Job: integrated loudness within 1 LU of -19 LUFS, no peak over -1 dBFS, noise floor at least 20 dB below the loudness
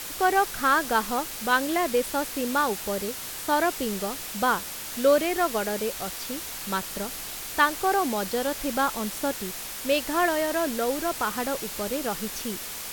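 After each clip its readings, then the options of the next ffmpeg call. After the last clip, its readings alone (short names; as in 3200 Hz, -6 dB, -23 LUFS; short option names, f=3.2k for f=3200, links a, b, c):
noise floor -36 dBFS; noise floor target -47 dBFS; loudness -26.5 LUFS; peak -7.5 dBFS; loudness target -19.0 LUFS
-> -af "afftdn=nr=11:nf=-36"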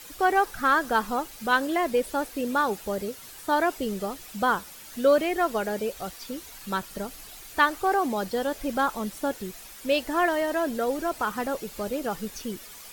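noise floor -45 dBFS; noise floor target -47 dBFS
-> -af "afftdn=nr=6:nf=-45"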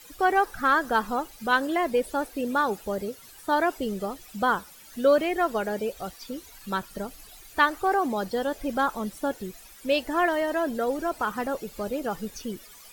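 noise floor -49 dBFS; loudness -26.5 LUFS; peak -7.5 dBFS; loudness target -19.0 LUFS
-> -af "volume=7.5dB,alimiter=limit=-1dB:level=0:latency=1"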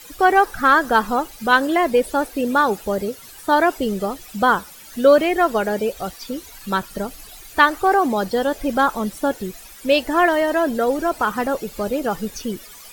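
loudness -19.5 LUFS; peak -1.0 dBFS; noise floor -42 dBFS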